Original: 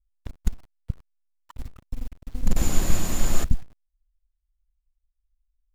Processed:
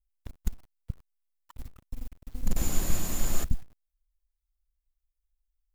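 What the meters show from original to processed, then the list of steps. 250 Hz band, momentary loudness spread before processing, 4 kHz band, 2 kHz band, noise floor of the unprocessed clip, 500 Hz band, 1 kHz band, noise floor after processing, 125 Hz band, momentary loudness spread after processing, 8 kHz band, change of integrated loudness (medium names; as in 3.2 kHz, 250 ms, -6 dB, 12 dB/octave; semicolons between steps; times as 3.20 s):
-6.0 dB, 17 LU, -5.0 dB, -5.5 dB, -77 dBFS, -6.0 dB, -6.0 dB, -83 dBFS, -6.0 dB, 18 LU, -3.0 dB, -4.5 dB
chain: treble shelf 10 kHz +10 dB; trim -6 dB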